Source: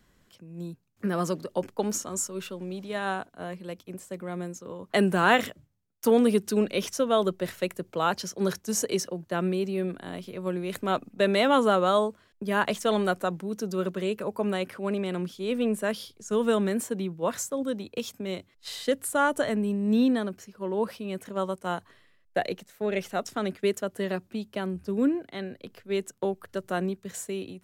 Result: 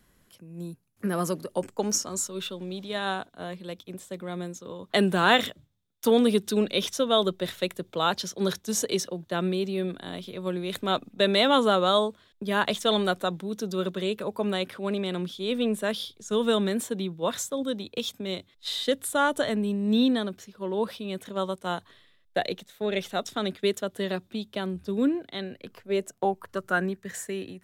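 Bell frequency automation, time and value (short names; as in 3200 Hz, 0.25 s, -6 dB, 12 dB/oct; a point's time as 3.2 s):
bell +13 dB 0.3 oct
1.45 s 11000 Hz
2.29 s 3600 Hz
25.49 s 3600 Hz
25.93 s 510 Hz
26.9 s 1800 Hz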